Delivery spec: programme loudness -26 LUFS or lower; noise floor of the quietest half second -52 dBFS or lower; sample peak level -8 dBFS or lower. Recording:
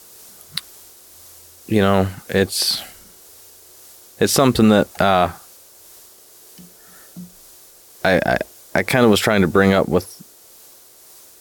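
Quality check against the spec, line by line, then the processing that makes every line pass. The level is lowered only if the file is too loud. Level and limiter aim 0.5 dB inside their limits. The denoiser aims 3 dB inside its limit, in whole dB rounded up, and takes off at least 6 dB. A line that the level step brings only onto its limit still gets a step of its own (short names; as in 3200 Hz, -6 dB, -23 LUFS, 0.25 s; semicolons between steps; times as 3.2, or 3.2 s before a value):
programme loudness -17.5 LUFS: fail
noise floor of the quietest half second -46 dBFS: fail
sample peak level -3.0 dBFS: fail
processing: gain -9 dB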